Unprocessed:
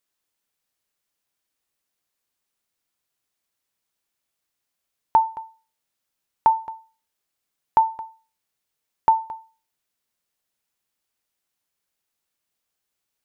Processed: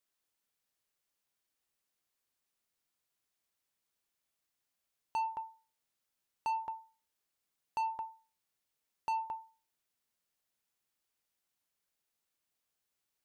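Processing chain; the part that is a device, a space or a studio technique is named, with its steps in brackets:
saturation between pre-emphasis and de-emphasis (high-shelf EQ 2,000 Hz +11 dB; soft clipping −24 dBFS, distortion −3 dB; high-shelf EQ 2,000 Hz −11 dB)
level −5 dB

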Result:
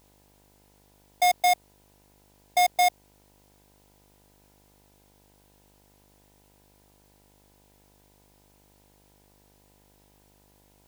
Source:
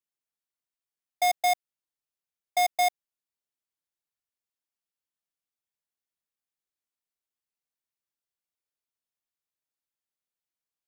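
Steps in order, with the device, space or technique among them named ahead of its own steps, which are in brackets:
video cassette with head-switching buzz (hum with harmonics 50 Hz, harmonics 20, −65 dBFS −3 dB per octave; white noise bed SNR 32 dB)
level +2.5 dB

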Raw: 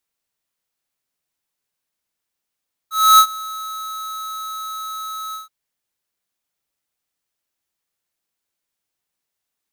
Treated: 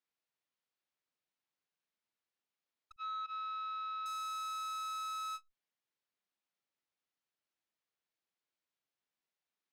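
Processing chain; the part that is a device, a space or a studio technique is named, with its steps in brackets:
valve radio (band-pass filter 140–4,400 Hz; tube saturation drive 35 dB, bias 0.8; saturating transformer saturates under 510 Hz)
0:02.96–0:04.06: elliptic band-pass filter 390–3,500 Hz, stop band 50 dB
level −3.5 dB

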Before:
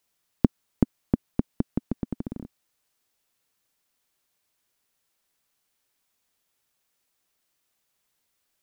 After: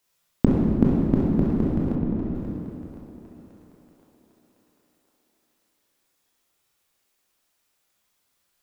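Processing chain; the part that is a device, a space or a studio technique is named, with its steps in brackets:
reverb reduction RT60 1.8 s
tunnel (flutter between parallel walls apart 11.3 metres, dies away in 0.5 s; convolution reverb RT60 2.2 s, pre-delay 19 ms, DRR −4.5 dB)
0:01.95–0:02.35: high-frequency loss of the air 270 metres
feedback echo with a high-pass in the loop 1,057 ms, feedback 37%, high-pass 520 Hz, level −13.5 dB
level +1 dB

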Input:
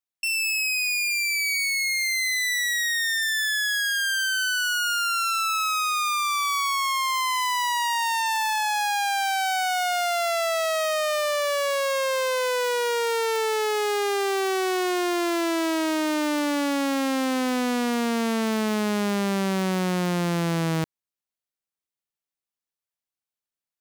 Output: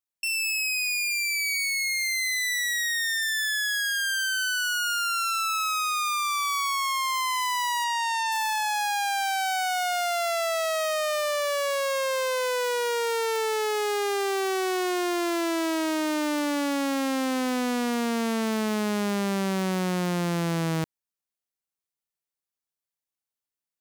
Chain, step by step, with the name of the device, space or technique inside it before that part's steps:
exciter from parts (in parallel at −9 dB: high-pass filter 4,600 Hz 12 dB per octave + soft clipping −31.5 dBFS, distortion −8 dB)
0:07.84–0:08.32: on the sum: low-pass filter 8,200 Hz 12 dB per octave
level −2 dB

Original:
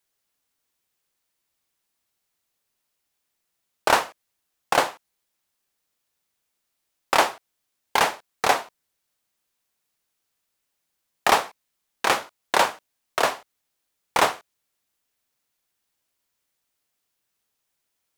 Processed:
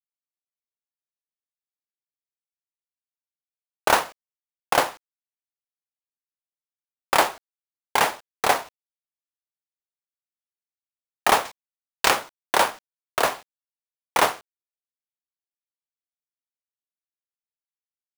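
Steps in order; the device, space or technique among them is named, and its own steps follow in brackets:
0:11.45–0:12.10: high-shelf EQ 2,800 Hz +11.5 dB
early 8-bit sampler (sample-rate reduction 12,000 Hz, jitter 0%; bit reduction 8 bits)

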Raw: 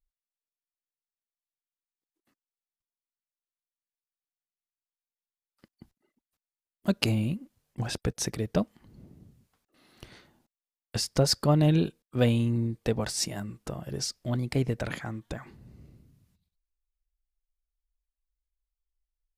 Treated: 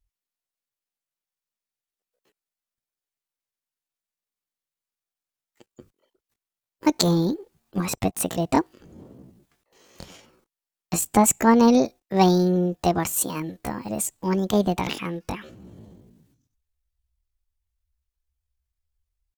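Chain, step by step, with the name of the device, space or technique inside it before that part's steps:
chipmunk voice (pitch shifter +7.5 semitones)
level +6 dB

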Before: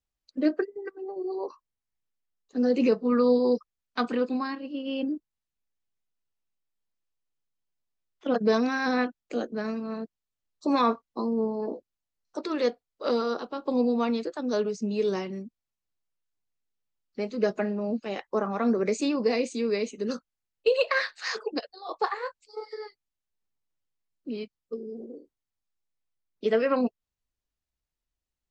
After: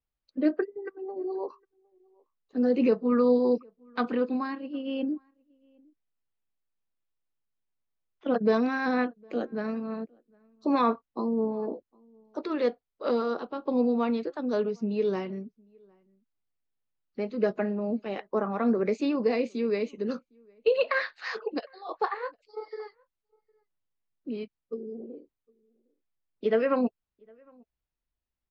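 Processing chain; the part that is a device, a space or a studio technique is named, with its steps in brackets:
shout across a valley (high-frequency loss of the air 220 metres; slap from a distant wall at 130 metres, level −30 dB)

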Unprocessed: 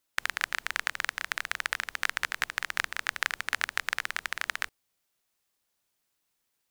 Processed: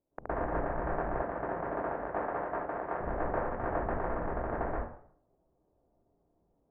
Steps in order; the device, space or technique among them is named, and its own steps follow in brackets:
next room (low-pass filter 660 Hz 24 dB per octave; convolution reverb RT60 0.60 s, pre-delay 110 ms, DRR −12 dB)
0:01.21–0:02.99: high-pass filter 140 Hz → 470 Hz 6 dB per octave
level +7.5 dB

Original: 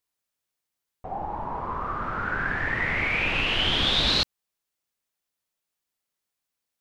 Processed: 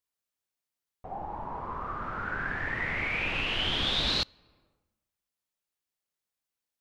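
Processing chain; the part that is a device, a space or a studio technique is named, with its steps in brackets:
compressed reverb return (on a send at −13 dB: convolution reverb RT60 1.0 s, pre-delay 11 ms + downward compressor 6 to 1, threshold −37 dBFS, peak gain reduction 16 dB)
on the sum: level −5.5 dB

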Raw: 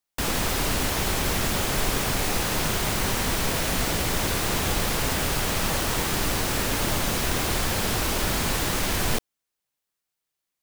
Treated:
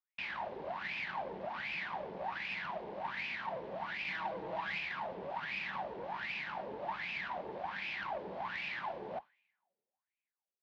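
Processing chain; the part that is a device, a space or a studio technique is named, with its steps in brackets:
coupled-rooms reverb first 0.35 s, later 2.1 s, from −26 dB, DRR 15.5 dB
0:04.07–0:04.79: comb filter 6.2 ms, depth 77%
wah-wah guitar rig (LFO wah 1.3 Hz 440–2,500 Hz, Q 9.2; tube saturation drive 36 dB, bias 0.5; loudspeaker in its box 89–4,200 Hz, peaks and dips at 99 Hz −10 dB, 190 Hz +8 dB, 270 Hz −5 dB, 460 Hz −10 dB, 870 Hz +4 dB, 1,300 Hz −8 dB)
level +5 dB

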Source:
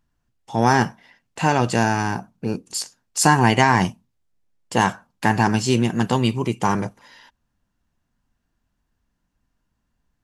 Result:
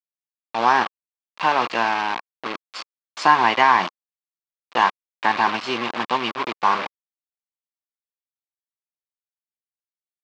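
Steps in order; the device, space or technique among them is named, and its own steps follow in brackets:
hand-held game console (bit reduction 4 bits; loudspeaker in its box 430–4,300 Hz, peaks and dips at 450 Hz −4 dB, 1,100 Hz +9 dB, 2,400 Hz +3 dB)
level −1 dB

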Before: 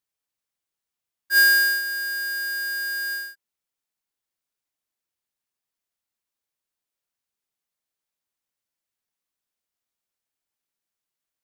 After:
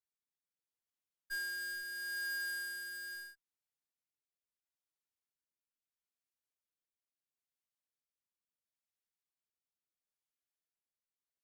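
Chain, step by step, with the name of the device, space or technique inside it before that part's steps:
0:02.46–0:02.97: thirty-one-band graphic EQ 250 Hz +9 dB, 630 Hz −8 dB, 10,000 Hz +5 dB
overdriven rotary cabinet (tube saturation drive 28 dB, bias 0.7; rotating-speaker cabinet horn 0.75 Hz)
level −6 dB

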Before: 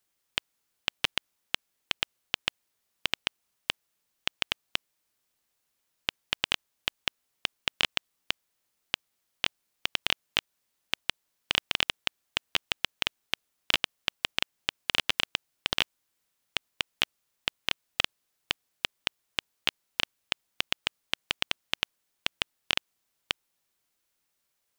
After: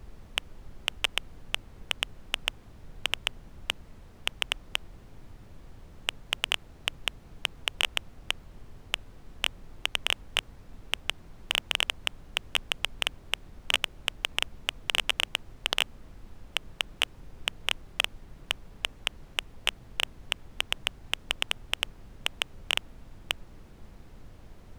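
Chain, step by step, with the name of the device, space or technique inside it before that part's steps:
aircraft cabin announcement (band-pass filter 410–3,700 Hz; soft clipping −16.5 dBFS, distortion −9 dB; brown noise bed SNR 10 dB)
level +7.5 dB

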